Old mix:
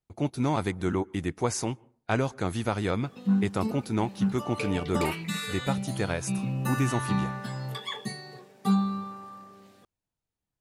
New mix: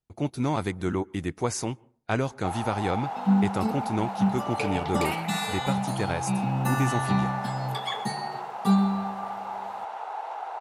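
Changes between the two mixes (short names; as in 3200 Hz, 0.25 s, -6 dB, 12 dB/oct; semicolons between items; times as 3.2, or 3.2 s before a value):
first sound: unmuted; second sound: send on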